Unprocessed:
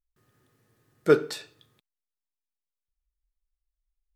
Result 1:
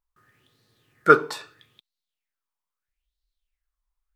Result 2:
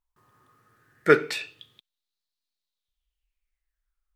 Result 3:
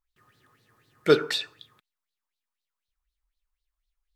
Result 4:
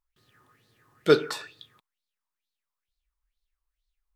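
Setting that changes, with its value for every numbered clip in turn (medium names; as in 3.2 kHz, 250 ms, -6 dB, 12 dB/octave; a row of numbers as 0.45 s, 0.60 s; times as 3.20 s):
sweeping bell, rate: 0.77 Hz, 0.21 Hz, 4 Hz, 2.2 Hz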